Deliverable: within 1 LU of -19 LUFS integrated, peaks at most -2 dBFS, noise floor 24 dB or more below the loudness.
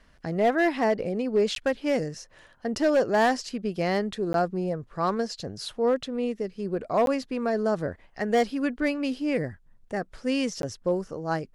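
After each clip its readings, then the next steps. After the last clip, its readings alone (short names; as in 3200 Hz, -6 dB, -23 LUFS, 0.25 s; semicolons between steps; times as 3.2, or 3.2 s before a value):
clipped 0.6%; flat tops at -16.0 dBFS; dropouts 4; longest dropout 12 ms; loudness -27.0 LUFS; peak -16.0 dBFS; loudness target -19.0 LUFS
-> clip repair -16 dBFS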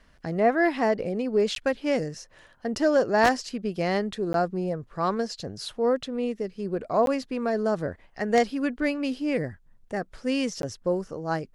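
clipped 0.0%; dropouts 4; longest dropout 12 ms
-> interpolate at 1.55/4.33/7.06/10.62, 12 ms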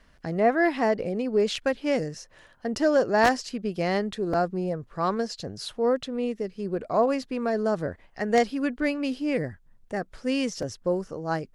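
dropouts 0; loudness -27.0 LUFS; peak -7.0 dBFS; loudness target -19.0 LUFS
-> gain +8 dB; limiter -2 dBFS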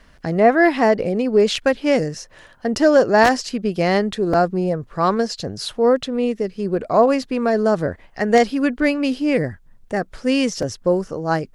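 loudness -19.0 LUFS; peak -2.0 dBFS; noise floor -50 dBFS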